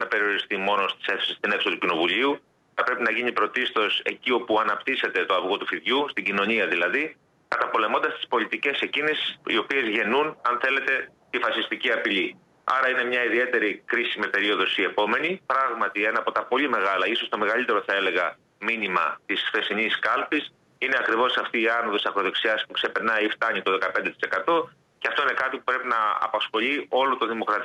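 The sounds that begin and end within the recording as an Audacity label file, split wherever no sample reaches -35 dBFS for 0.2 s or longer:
2.780000	7.110000	sound
7.520000	11.050000	sound
11.340000	12.310000	sound
12.680000	18.320000	sound
18.620000	20.470000	sound
20.820000	24.650000	sound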